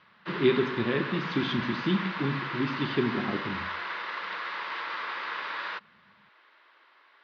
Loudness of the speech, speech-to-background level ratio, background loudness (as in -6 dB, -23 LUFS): -29.5 LUFS, 5.0 dB, -34.5 LUFS